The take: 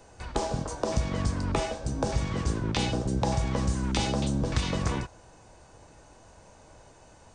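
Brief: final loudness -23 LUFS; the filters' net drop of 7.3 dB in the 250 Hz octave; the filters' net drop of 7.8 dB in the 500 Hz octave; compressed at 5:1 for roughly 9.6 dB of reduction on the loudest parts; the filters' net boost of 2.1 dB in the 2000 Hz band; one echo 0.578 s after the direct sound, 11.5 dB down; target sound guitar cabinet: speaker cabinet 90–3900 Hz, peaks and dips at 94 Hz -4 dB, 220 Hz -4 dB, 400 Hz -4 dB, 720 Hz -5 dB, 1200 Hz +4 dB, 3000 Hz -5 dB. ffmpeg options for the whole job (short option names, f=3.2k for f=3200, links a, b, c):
-af "equalizer=f=250:t=o:g=-6,equalizer=f=500:t=o:g=-5.5,equalizer=f=2k:t=o:g=3.5,acompressor=threshold=-34dB:ratio=5,highpass=90,equalizer=f=94:t=q:w=4:g=-4,equalizer=f=220:t=q:w=4:g=-4,equalizer=f=400:t=q:w=4:g=-4,equalizer=f=720:t=q:w=4:g=-5,equalizer=f=1.2k:t=q:w=4:g=4,equalizer=f=3k:t=q:w=4:g=-5,lowpass=f=3.9k:w=0.5412,lowpass=f=3.9k:w=1.3066,aecho=1:1:578:0.266,volume=18dB"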